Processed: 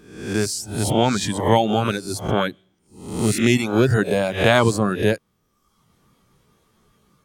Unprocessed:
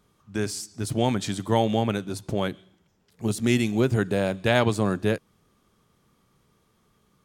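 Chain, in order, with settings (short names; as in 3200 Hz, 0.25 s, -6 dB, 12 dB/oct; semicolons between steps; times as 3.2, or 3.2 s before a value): spectral swells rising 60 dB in 0.69 s; reverb removal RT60 0.9 s; gain +5.5 dB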